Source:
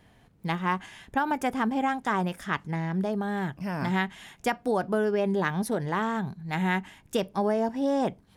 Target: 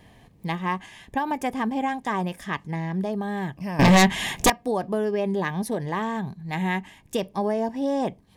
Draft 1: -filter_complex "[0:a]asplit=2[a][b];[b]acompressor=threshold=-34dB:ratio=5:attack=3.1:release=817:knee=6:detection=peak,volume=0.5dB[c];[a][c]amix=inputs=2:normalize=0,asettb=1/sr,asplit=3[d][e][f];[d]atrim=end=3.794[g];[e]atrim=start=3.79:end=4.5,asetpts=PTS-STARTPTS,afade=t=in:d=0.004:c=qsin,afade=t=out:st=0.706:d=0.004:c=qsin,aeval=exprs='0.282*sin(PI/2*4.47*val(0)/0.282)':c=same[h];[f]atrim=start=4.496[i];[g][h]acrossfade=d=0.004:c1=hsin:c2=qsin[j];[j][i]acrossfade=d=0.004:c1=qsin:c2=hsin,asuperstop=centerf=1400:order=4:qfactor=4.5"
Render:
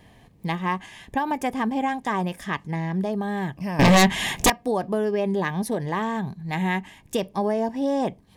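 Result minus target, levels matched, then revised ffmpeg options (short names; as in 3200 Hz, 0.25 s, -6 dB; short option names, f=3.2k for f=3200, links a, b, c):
compressor: peak gain reduction -8.5 dB
-filter_complex "[0:a]asplit=2[a][b];[b]acompressor=threshold=-44.5dB:ratio=5:attack=3.1:release=817:knee=6:detection=peak,volume=0.5dB[c];[a][c]amix=inputs=2:normalize=0,asettb=1/sr,asplit=3[d][e][f];[d]atrim=end=3.794[g];[e]atrim=start=3.79:end=4.5,asetpts=PTS-STARTPTS,afade=t=in:d=0.004:c=qsin,afade=t=out:st=0.706:d=0.004:c=qsin,aeval=exprs='0.282*sin(PI/2*4.47*val(0)/0.282)':c=same[h];[f]atrim=start=4.496[i];[g][h]acrossfade=d=0.004:c1=hsin:c2=qsin[j];[j][i]acrossfade=d=0.004:c1=qsin:c2=hsin,asuperstop=centerf=1400:order=4:qfactor=4.5"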